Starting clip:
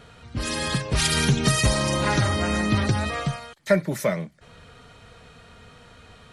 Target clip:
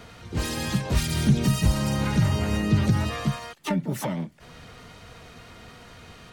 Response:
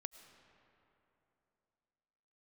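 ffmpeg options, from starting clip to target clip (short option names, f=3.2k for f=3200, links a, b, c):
-filter_complex "[0:a]asplit=3[a][b][c];[b]asetrate=66075,aresample=44100,atempo=0.66742,volume=-4dB[d];[c]asetrate=88200,aresample=44100,atempo=0.5,volume=-17dB[e];[a][d][e]amix=inputs=3:normalize=0,acrossover=split=240[f][g];[g]acompressor=threshold=-30dB:ratio=10[h];[f][h]amix=inputs=2:normalize=0,volume=1dB"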